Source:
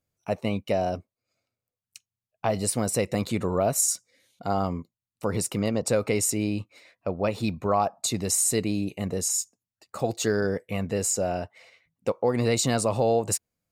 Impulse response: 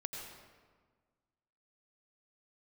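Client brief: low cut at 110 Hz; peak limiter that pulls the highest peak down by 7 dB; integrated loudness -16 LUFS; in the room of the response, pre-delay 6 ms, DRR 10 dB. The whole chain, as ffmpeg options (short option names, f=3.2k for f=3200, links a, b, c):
-filter_complex "[0:a]highpass=110,alimiter=limit=-17.5dB:level=0:latency=1,asplit=2[a][b];[1:a]atrim=start_sample=2205,adelay=6[c];[b][c]afir=irnorm=-1:irlink=0,volume=-9.5dB[d];[a][d]amix=inputs=2:normalize=0,volume=13dB"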